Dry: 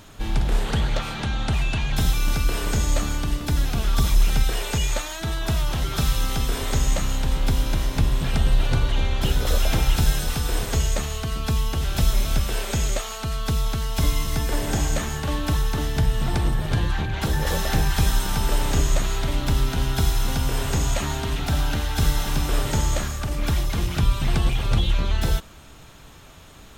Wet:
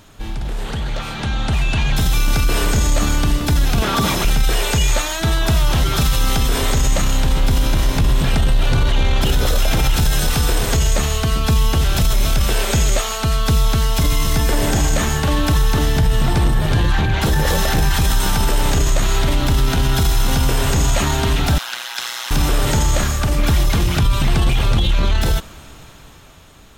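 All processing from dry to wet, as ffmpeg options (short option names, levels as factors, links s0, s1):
-filter_complex "[0:a]asettb=1/sr,asplit=3[s0][s1][s2];[s0]atrim=end=3.824[s3];[s1]atrim=start=3.82:end=4.25,asetpts=PTS-STARTPTS,afade=t=in:d=0.004:c=qsin,afade=t=out:st=0.426:d=0.004:c=qsin,highpass=190,acontrast=84,highshelf=f=2900:g=-9.5[s4];[s2]atrim=start=4.246[s5];[s3][s4]acrossfade=d=0.004:c1=hsin:c2=qsin[s6];[s6][s5]acrossfade=d=0.004:c1=qsin:c2=hsin,asettb=1/sr,asplit=3[s7][s8][s9];[s7]atrim=end=21.584[s10];[s8]atrim=start=21.58:end=22.31,asetpts=PTS-STARTPTS,afade=t=in:d=0.004:c=qsin,afade=t=out:st=0.726:d=0.004:c=qsin,acrossover=split=7000[s11][s12];[s12]acompressor=threshold=0.00708:ratio=4:attack=1:release=60[s13];[s11][s13]amix=inputs=2:normalize=0,highpass=1300,aeval=exprs='val(0)*sin(2*PI*60*n/s)':c=same[s14];[s9]atrim=start=22.306[s15];[s10][s14]acrossfade=d=0.004:c1=hsin:c2=qsin[s16];[s16][s15]acrossfade=d=0.004:c1=qsin:c2=hsin,alimiter=limit=0.133:level=0:latency=1:release=11,dynaudnorm=f=270:g=11:m=2.99"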